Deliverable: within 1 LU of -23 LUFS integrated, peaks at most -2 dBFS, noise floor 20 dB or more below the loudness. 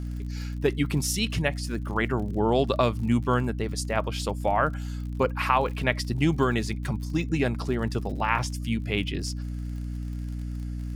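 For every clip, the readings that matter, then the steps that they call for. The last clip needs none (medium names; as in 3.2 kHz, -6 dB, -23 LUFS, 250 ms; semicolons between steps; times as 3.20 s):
tick rate 49 per s; hum 60 Hz; highest harmonic 300 Hz; hum level -30 dBFS; loudness -27.5 LUFS; peak level -7.0 dBFS; loudness target -23.0 LUFS
-> de-click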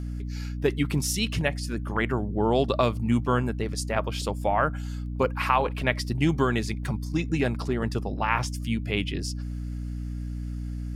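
tick rate 0.46 per s; hum 60 Hz; highest harmonic 300 Hz; hum level -30 dBFS
-> de-hum 60 Hz, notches 5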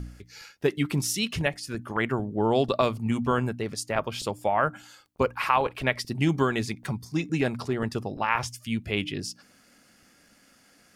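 hum not found; loudness -27.5 LUFS; peak level -7.5 dBFS; loudness target -23.0 LUFS
-> trim +4.5 dB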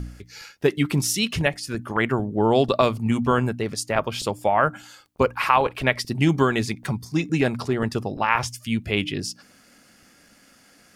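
loudness -23.0 LUFS; peak level -3.0 dBFS; noise floor -55 dBFS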